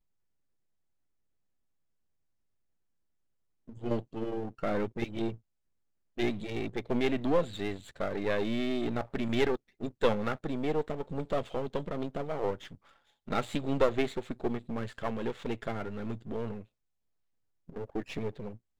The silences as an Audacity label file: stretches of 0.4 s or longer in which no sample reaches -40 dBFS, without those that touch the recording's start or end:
5.340000	6.180000	silence
12.750000	13.280000	silence
16.610000	17.690000	silence